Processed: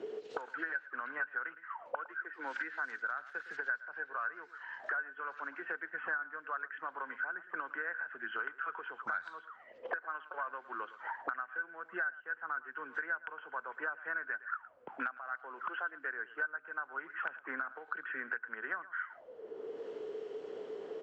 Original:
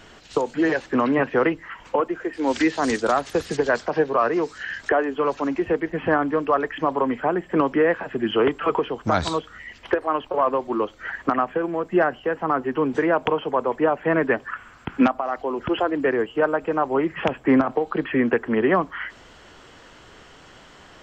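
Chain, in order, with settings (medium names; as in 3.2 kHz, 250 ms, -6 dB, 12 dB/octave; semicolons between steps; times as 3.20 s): auto-wah 380–1500 Hz, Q 18, up, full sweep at -23.5 dBFS; delay 111 ms -18 dB; three bands compressed up and down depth 100%; trim +1 dB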